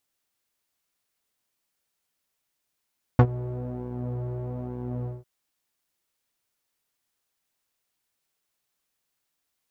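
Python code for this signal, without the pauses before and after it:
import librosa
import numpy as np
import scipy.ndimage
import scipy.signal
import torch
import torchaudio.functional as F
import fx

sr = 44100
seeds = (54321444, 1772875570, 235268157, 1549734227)

y = fx.sub_patch_pwm(sr, seeds[0], note=47, wave2='saw', interval_st=0, detune_cents=16, level2_db=-9.0, sub_db=-15.0, noise_db=-7.0, kind='lowpass', cutoff_hz=510.0, q=1.1, env_oct=1.5, env_decay_s=0.05, env_sustain_pct=10, attack_ms=1.5, decay_s=0.07, sustain_db=-19, release_s=0.19, note_s=1.86, lfo_hz=1.1, width_pct=36, width_swing_pct=17)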